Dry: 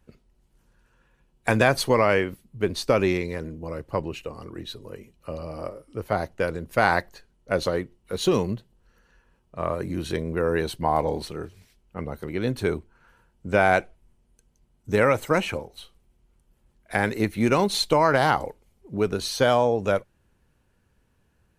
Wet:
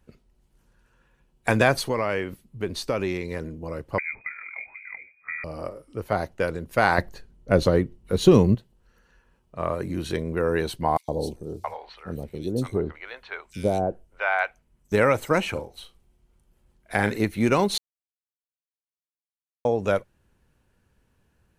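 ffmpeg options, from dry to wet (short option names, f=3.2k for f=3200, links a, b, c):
-filter_complex "[0:a]asettb=1/sr,asplit=3[a][b][c];[a]atrim=end=1.794[d];[b]atrim=start=1.79:end=3.31,asetpts=PTS-STARTPTS,afade=t=in:d=0.004:c=qsin,afade=t=out:st=1.516:d=0.004:c=qsin,acompressor=threshold=-30dB:ratio=1.5:attack=3.2:release=140:knee=1:detection=peak[e];[c]atrim=start=3.306[f];[d][e]acrossfade=d=0.004:c1=hsin:c2=qsin[g];[g][f]acrossfade=d=0.004:c1=qsin:c2=hsin,asettb=1/sr,asplit=3[h][i][j];[h]atrim=end=3.984[k];[i]atrim=start=3.98:end=5.44,asetpts=PTS-STARTPTS,afade=t=in:d=0.004:c=qsin,afade=t=out:st=1.456:d=0.004:c=qsin,lowpass=f=2.1k:t=q:w=0.5098,lowpass=f=2.1k:t=q:w=0.6013,lowpass=f=2.1k:t=q:w=0.9,lowpass=f=2.1k:t=q:w=2.563,afreqshift=-2500[l];[j]atrim=start=5.436[m];[k][l]acrossfade=d=0.004:c1=hsin:c2=qsin[n];[n][m]acrossfade=d=0.004:c1=qsin:c2=hsin,asettb=1/sr,asplit=3[o][p][q];[o]atrim=end=6.984[r];[p]atrim=start=6.98:end=8.55,asetpts=PTS-STARTPTS,afade=t=in:d=0.004:c=qsin,afade=t=out:st=1.566:d=0.004:c=qsin,lowshelf=f=410:g=11[s];[q]atrim=start=8.546[t];[r][s]acrossfade=d=0.004:c1=hsin:c2=qsin[u];[u][t]acrossfade=d=0.004:c1=qsin:c2=hsin,asettb=1/sr,asplit=3[v][w][x];[v]atrim=end=10.974[y];[w]atrim=start=10.97:end=14.92,asetpts=PTS-STARTPTS,afade=t=in:d=0.004:c=qsin,afade=t=out:st=3.946:d=0.004:c=qsin,acrossover=split=720|3600[z][aa][ab];[z]adelay=110[ac];[aa]adelay=670[ad];[ac][ad][ab]amix=inputs=3:normalize=0,atrim=end_sample=174195[ae];[x]atrim=start=14.916[af];[y][ae]acrossfade=d=0.004:c1=hsin:c2=qsin[ag];[ag][af]acrossfade=d=0.004:c1=qsin:c2=hsin,asettb=1/sr,asplit=3[ah][ai][aj];[ah]atrim=end=15.524[ak];[ai]atrim=start=15.52:end=17.18,asetpts=PTS-STARTPTS,afade=t=in:d=0.004:c=qsin,afade=t=out:st=1.656:d=0.004:c=qsin,asplit=2[al][am];[am]adelay=39,volume=-10dB[an];[al][an]amix=inputs=2:normalize=0,atrim=end_sample=73206[ao];[aj]atrim=start=17.176[ap];[ak][ao]acrossfade=d=0.004:c1=hsin:c2=qsin[aq];[aq][ap]acrossfade=d=0.004:c1=qsin:c2=hsin,asplit=3[ar][as][at];[ar]atrim=end=17.78,asetpts=PTS-STARTPTS,afade=t=out:st=17.776:d=0.004:c=hsin[au];[as]atrim=start=17.78:end=19.65,asetpts=PTS-STARTPTS,volume=0[av];[at]atrim=start=19.65,asetpts=PTS-STARTPTS,afade=t=in:d=0.004:c=hsin[aw];[au][av][aw]concat=n=3:v=0:a=1"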